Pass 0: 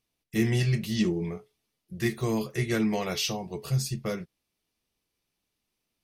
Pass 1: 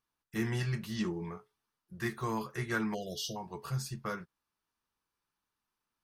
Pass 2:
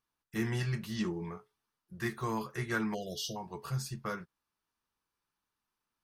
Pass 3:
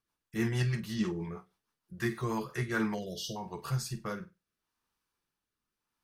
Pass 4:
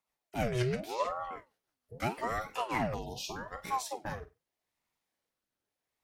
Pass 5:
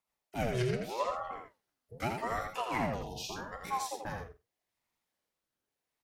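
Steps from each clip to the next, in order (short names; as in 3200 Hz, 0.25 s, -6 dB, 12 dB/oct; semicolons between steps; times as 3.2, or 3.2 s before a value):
spectral delete 2.94–3.36, 730–2800 Hz; band shelf 1200 Hz +12 dB 1.2 oct; gain -8.5 dB
nothing audible
flutter echo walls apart 8.3 m, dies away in 0.25 s; rotary speaker horn 6.3 Hz, later 0.8 Hz, at 2.19; gain +3.5 dB
ring modulator with a swept carrier 610 Hz, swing 60%, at 0.82 Hz; gain +1.5 dB
echo 83 ms -5.5 dB; gain -1.5 dB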